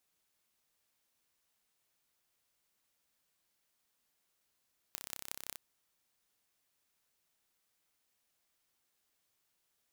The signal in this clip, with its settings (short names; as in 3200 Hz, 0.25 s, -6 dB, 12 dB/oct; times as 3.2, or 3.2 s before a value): pulse train 32.9/s, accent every 6, -11 dBFS 0.63 s